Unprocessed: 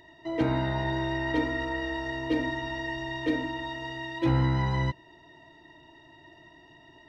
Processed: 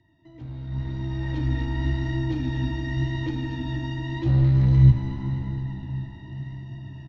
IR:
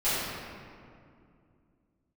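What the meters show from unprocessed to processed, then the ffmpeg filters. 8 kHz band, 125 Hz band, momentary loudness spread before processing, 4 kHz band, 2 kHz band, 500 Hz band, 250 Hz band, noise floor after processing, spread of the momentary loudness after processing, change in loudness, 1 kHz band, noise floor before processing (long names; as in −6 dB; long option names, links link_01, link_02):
can't be measured, +11.0 dB, 9 LU, −3.0 dB, −6.0 dB, −6.0 dB, +1.5 dB, −46 dBFS, 18 LU, +5.0 dB, −7.5 dB, −55 dBFS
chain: -filter_complex "[0:a]firequalizer=gain_entry='entry(270,0);entry(440,-18);entry(820,-12)':delay=0.05:min_phase=1,asplit=2[link_01][link_02];[link_02]aecho=0:1:233|466|699|932|1165|1398|1631:0.224|0.134|0.0806|0.0484|0.029|0.0174|0.0104[link_03];[link_01][link_03]amix=inputs=2:normalize=0,asoftclip=type=tanh:threshold=-28.5dB,acrossover=split=140|3000[link_04][link_05][link_06];[link_05]acompressor=threshold=-46dB:ratio=3[link_07];[link_04][link_07][link_06]amix=inputs=3:normalize=0,asplit=6[link_08][link_09][link_10][link_11][link_12][link_13];[link_09]adelay=274,afreqshift=-51,volume=-18dB[link_14];[link_10]adelay=548,afreqshift=-102,volume=-23.4dB[link_15];[link_11]adelay=822,afreqshift=-153,volume=-28.7dB[link_16];[link_12]adelay=1096,afreqshift=-204,volume=-34.1dB[link_17];[link_13]adelay=1370,afreqshift=-255,volume=-39.4dB[link_18];[link_08][link_14][link_15][link_16][link_17][link_18]amix=inputs=6:normalize=0,asplit=2[link_19][link_20];[1:a]atrim=start_sample=2205,asetrate=27342,aresample=44100,adelay=125[link_21];[link_20][link_21]afir=irnorm=-1:irlink=0,volume=-24.5dB[link_22];[link_19][link_22]amix=inputs=2:normalize=0,flanger=delay=8.7:depth=9:regen=58:speed=0.89:shape=sinusoidal,dynaudnorm=framelen=320:gausssize=7:maxgain=16dB,equalizer=frequency=110:width=1.7:gain=8,aresample=16000,aresample=44100"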